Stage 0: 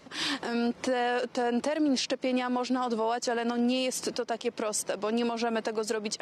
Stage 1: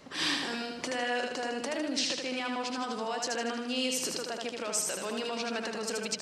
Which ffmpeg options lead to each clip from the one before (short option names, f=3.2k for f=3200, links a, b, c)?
-filter_complex "[0:a]acrossover=split=1400[a][b];[a]alimiter=level_in=6.5dB:limit=-24dB:level=0:latency=1:release=133,volume=-6.5dB[c];[c][b]amix=inputs=2:normalize=0,aecho=1:1:78|156|234|312|390|468|546:0.668|0.334|0.167|0.0835|0.0418|0.0209|0.0104"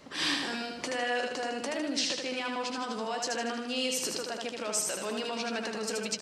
-filter_complex "[0:a]asplit=2[a][b];[b]adelay=14,volume=-11dB[c];[a][c]amix=inputs=2:normalize=0"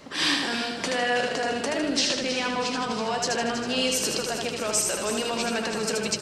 -filter_complex "[0:a]asplit=8[a][b][c][d][e][f][g][h];[b]adelay=322,afreqshift=-46,volume=-10.5dB[i];[c]adelay=644,afreqshift=-92,volume=-15.1dB[j];[d]adelay=966,afreqshift=-138,volume=-19.7dB[k];[e]adelay=1288,afreqshift=-184,volume=-24.2dB[l];[f]adelay=1610,afreqshift=-230,volume=-28.8dB[m];[g]adelay=1932,afreqshift=-276,volume=-33.4dB[n];[h]adelay=2254,afreqshift=-322,volume=-38dB[o];[a][i][j][k][l][m][n][o]amix=inputs=8:normalize=0,volume=6dB"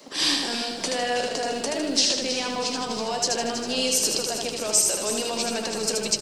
-filter_complex "[0:a]firequalizer=gain_entry='entry(740,0);entry(1400,-6);entry(4800,5)':delay=0.05:min_phase=1,acrossover=split=190|560|3900[a][b][c][d];[a]acrusher=bits=5:dc=4:mix=0:aa=0.000001[e];[e][b][c][d]amix=inputs=4:normalize=0"